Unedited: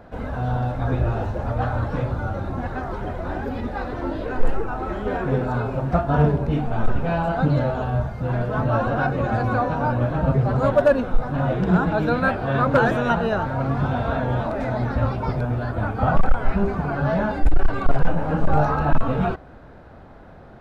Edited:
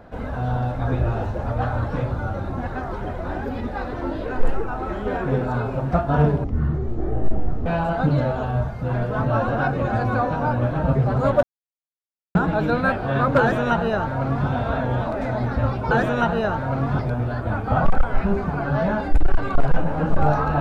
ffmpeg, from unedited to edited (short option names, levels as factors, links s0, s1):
-filter_complex "[0:a]asplit=7[s0][s1][s2][s3][s4][s5][s6];[s0]atrim=end=6.444[s7];[s1]atrim=start=6.44:end=7.05,asetpts=PTS-STARTPTS,asetrate=22050,aresample=44100[s8];[s2]atrim=start=7.046:end=10.82,asetpts=PTS-STARTPTS,afade=t=out:st=3.77:d=0.004:c=hsin[s9];[s3]atrim=start=10.82:end=11.74,asetpts=PTS-STARTPTS,volume=0[s10];[s4]atrim=start=11.74:end=15.302,asetpts=PTS-STARTPTS,afade=t=in:d=0.004:c=hsin[s11];[s5]atrim=start=12.788:end=13.872[s12];[s6]atrim=start=15.298[s13];[s7][s8]acrossfade=d=0.004:c1=hsin:c2=hsin[s14];[s9][s10][s11]concat=n=3:v=0:a=1[s15];[s14][s15]acrossfade=d=0.004:c1=hsin:c2=hsin[s16];[s16][s12]acrossfade=d=0.004:c1=hsin:c2=hsin[s17];[s17][s13]acrossfade=d=0.004:c1=hsin:c2=hsin"